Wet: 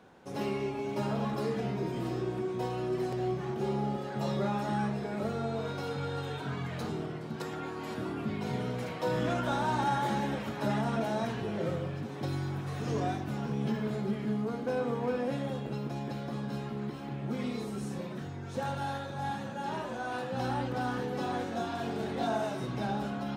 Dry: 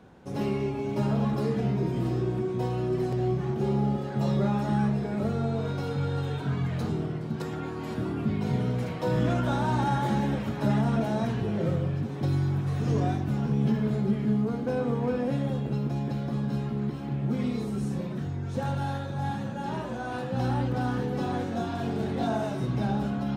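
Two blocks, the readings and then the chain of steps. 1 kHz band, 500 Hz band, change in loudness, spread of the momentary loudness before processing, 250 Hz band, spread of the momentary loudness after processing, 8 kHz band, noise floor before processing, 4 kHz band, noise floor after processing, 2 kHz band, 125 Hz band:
-1.0 dB, -2.5 dB, -5.5 dB, 6 LU, -6.5 dB, 6 LU, n/a, -34 dBFS, 0.0 dB, -40 dBFS, -0.5 dB, -9.0 dB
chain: low shelf 240 Hz -12 dB

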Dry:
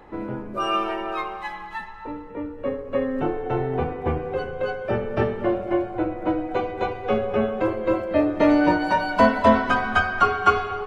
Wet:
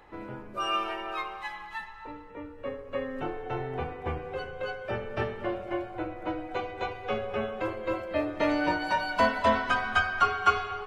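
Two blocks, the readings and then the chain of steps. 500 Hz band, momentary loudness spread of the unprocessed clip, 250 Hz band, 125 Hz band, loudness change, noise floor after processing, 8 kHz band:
-9.0 dB, 14 LU, -11.5 dB, -8.5 dB, -7.0 dB, -46 dBFS, n/a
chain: EQ curve 100 Hz 0 dB, 220 Hz -5 dB, 2900 Hz +6 dB; gain -7.5 dB

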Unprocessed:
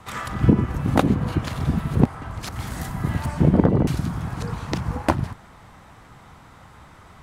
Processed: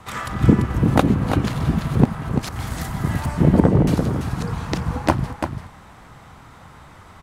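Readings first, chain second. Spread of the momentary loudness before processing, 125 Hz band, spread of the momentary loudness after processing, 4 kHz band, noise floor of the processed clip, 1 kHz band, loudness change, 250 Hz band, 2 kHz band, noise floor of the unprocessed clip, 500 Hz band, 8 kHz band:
13 LU, +2.5 dB, 12 LU, +3.0 dB, -45 dBFS, +3.0 dB, +2.5 dB, +2.5 dB, +3.0 dB, -48 dBFS, +3.0 dB, +3.0 dB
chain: on a send: echo 0.34 s -7 dB; on the sum: gain +2 dB

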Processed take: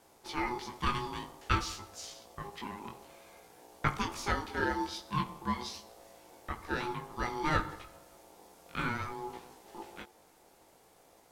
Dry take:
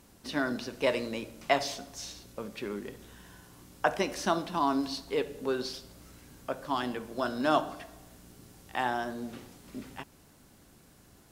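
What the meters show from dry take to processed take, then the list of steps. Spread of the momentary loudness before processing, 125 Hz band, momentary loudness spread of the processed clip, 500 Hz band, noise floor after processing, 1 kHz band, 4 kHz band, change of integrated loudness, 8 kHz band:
18 LU, +5.5 dB, 20 LU, -10.0 dB, -63 dBFS, -2.5 dB, -3.5 dB, -3.5 dB, -3.0 dB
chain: de-hum 51.28 Hz, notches 7; chorus 0.53 Hz, delay 17 ms, depth 3.9 ms; ring modulator 610 Hz; gain +2.5 dB

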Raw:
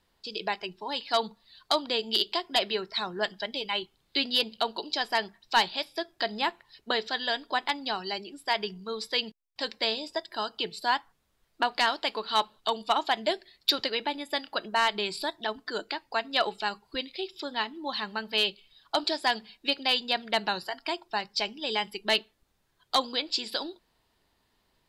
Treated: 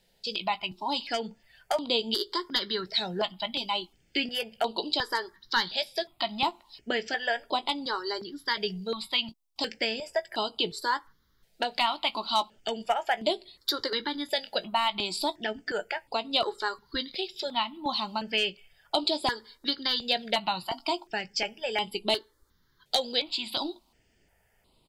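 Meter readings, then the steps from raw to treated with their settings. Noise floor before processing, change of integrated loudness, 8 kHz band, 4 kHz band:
-73 dBFS, -0.5 dB, +0.5 dB, -0.5 dB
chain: compressor 2:1, threshold -29 dBFS, peak gain reduction 6.5 dB; doubler 17 ms -12 dB; step phaser 2.8 Hz 300–6000 Hz; gain +6 dB

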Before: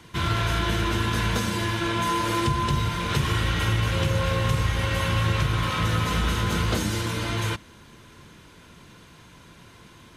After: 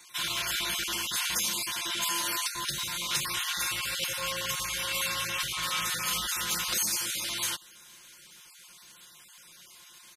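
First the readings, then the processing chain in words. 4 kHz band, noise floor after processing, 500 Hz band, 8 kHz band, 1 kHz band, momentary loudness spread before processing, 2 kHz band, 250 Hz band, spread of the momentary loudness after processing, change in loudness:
+0.5 dB, -54 dBFS, -14.0 dB, +7.0 dB, -9.0 dB, 3 LU, -4.0 dB, -18.0 dB, 3 LU, -4.5 dB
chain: random spectral dropouts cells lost 23%; pre-emphasis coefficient 0.97; comb 5.6 ms, depth 88%; gain +6 dB

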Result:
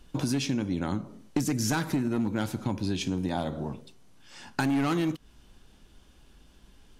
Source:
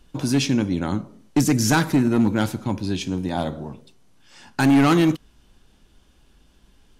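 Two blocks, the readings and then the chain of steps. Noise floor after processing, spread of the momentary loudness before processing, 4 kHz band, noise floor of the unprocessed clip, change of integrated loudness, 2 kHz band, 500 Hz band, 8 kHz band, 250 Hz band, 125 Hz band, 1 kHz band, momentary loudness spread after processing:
-58 dBFS, 13 LU, -7.5 dB, -58 dBFS, -8.5 dB, -8.5 dB, -8.0 dB, -7.5 dB, -8.5 dB, -8.0 dB, -8.5 dB, 10 LU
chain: compressor 6:1, threshold -25 dBFS, peak gain reduction 11 dB

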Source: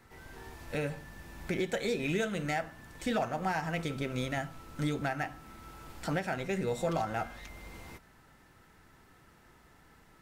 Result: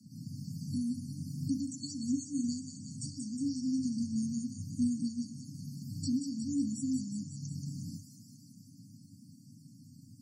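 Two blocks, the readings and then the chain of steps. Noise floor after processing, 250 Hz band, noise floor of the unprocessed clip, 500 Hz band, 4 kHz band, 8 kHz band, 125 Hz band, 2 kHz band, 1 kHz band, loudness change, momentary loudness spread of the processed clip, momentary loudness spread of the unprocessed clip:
-56 dBFS, +5.0 dB, -61 dBFS, under -30 dB, -4.0 dB, +5.5 dB, -1.5 dB, under -40 dB, under -40 dB, -2.0 dB, 22 LU, 17 LU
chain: rattling part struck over -45 dBFS, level -34 dBFS; in parallel at +2 dB: compressor, threshold -39 dBFS, peak gain reduction 11.5 dB; on the sum: FFT band-reject 200–4200 Hz; on a send: thin delay 0.181 s, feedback 72%, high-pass 4600 Hz, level -4 dB; on the sum: frequency shift +94 Hz; HPF 86 Hz; low shelf 160 Hz +3 dB; loudest bins only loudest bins 64; gain +1.5 dB

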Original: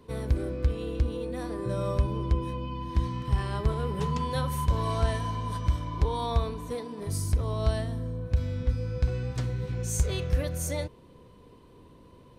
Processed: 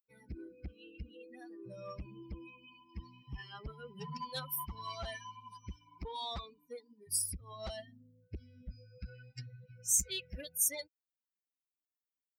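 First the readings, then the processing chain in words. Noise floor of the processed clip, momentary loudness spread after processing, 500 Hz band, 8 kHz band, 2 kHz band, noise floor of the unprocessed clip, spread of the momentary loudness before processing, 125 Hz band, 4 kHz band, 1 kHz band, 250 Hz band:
under -85 dBFS, 20 LU, -15.5 dB, +4.5 dB, -8.0 dB, -53 dBFS, 6 LU, -21.5 dB, -3.0 dB, -12.5 dB, -17.0 dB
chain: per-bin expansion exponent 3; added harmonics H 5 -7 dB, 7 -20 dB, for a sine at -17 dBFS; pre-emphasis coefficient 0.9; gain +2.5 dB

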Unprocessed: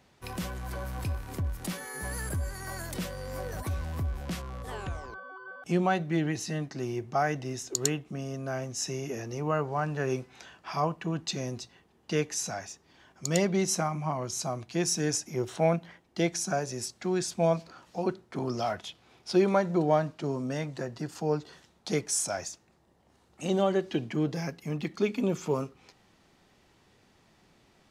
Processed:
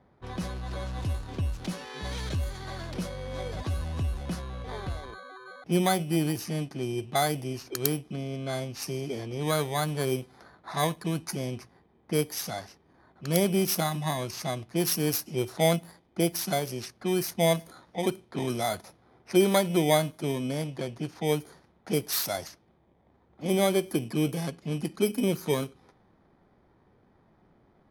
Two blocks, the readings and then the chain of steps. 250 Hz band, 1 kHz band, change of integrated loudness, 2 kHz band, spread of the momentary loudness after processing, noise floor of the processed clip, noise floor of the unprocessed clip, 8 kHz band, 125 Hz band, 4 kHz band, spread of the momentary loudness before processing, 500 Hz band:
+2.0 dB, +0.5 dB, +1.5 dB, +1.0 dB, 12 LU, -64 dBFS, -64 dBFS, -1.5 dB, +2.0 dB, +4.5 dB, 12 LU, +1.5 dB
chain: FFT order left unsorted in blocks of 16 samples; low-pass opened by the level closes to 1900 Hz, open at -26 dBFS; gain +2 dB

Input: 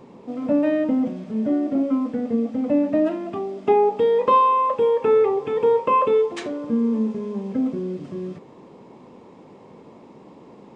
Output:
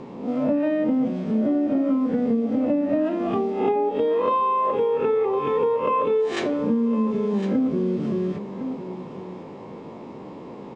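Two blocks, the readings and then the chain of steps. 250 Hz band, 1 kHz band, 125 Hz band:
+0.5 dB, -4.0 dB, +4.5 dB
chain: spectral swells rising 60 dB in 0.47 s; air absorption 67 m; vocal rider within 3 dB 0.5 s; on a send: echo 1.058 s -13 dB; on the sum: compressor, threshold -21 dBFS, peak gain reduction 8 dB; gain +2.5 dB

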